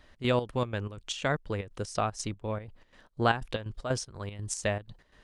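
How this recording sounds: chopped level 4.1 Hz, depth 65%, duty 60%

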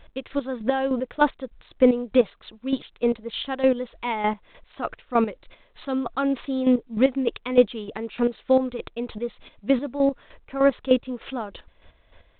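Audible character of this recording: chopped level 3.3 Hz, depth 65%, duty 30%; A-law

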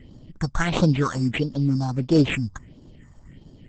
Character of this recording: aliases and images of a low sample rate 5000 Hz, jitter 0%; phasing stages 4, 1.5 Hz, lowest notch 390–2100 Hz; Opus

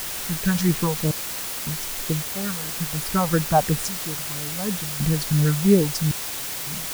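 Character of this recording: phasing stages 4, 3 Hz, lowest notch 330–1200 Hz; random-step tremolo 1.8 Hz, depth 100%; a quantiser's noise floor 6-bit, dither triangular

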